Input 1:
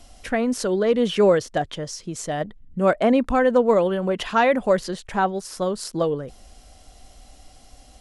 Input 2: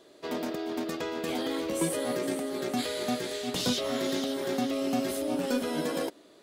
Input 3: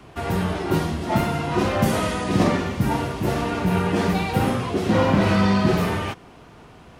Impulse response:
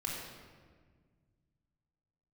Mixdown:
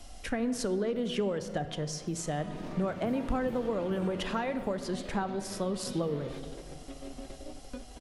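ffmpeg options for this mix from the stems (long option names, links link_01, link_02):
-filter_complex "[0:a]acompressor=threshold=-22dB:ratio=6,volume=-2.5dB,asplit=3[link_01][link_02][link_03];[link_02]volume=-11dB[link_04];[1:a]lowpass=3900,adelay=2200,volume=-11.5dB[link_05];[2:a]highpass=frequency=190:poles=1,acompressor=threshold=-28dB:ratio=6,adelay=250,volume=-9dB,afade=type=in:start_time=2.12:duration=0.74:silence=0.251189,afade=type=out:start_time=4.17:duration=0.42:silence=0.446684[link_06];[link_03]apad=whole_len=380445[link_07];[link_05][link_07]sidechaingate=range=-33dB:threshold=-47dB:ratio=16:detection=peak[link_08];[3:a]atrim=start_sample=2205[link_09];[link_04][link_09]afir=irnorm=-1:irlink=0[link_10];[link_01][link_08][link_06][link_10]amix=inputs=4:normalize=0,acrossover=split=240[link_11][link_12];[link_12]acompressor=threshold=-43dB:ratio=1.5[link_13];[link_11][link_13]amix=inputs=2:normalize=0"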